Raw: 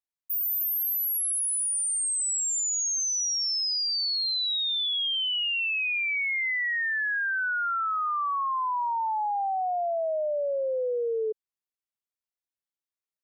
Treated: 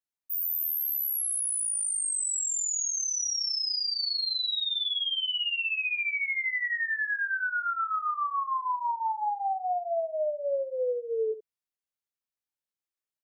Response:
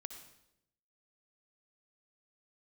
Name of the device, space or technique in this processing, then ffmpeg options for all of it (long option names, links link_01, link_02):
slapback doubling: -filter_complex "[0:a]asettb=1/sr,asplit=3[link_01][link_02][link_03];[link_01]atrim=end=2.924[link_04];[link_02]atrim=start=2.92:end=3.95,asetpts=PTS-STARTPTS,afade=type=in:duration=0.004:curve=qsin,afade=type=out:start_time=1.026:duration=0.004:curve=qsin,lowpass=frequency=8000:width=0.5412,lowpass=frequency=8000:width=1.3066[link_05];[link_03]atrim=start=3.946[link_06];[link_04][link_05]acrossfade=duration=0.004:curve1=hsin:curve2=qsin[link_07];[link_07][link_06]acrossfade=duration=0.004:curve1=qsin:curve2=hsin,asplit=3[link_08][link_09][link_10];[link_09]adelay=18,volume=-3dB[link_11];[link_10]adelay=82,volume=-11dB[link_12];[link_08][link_11][link_12]amix=inputs=3:normalize=0,volume=-4dB"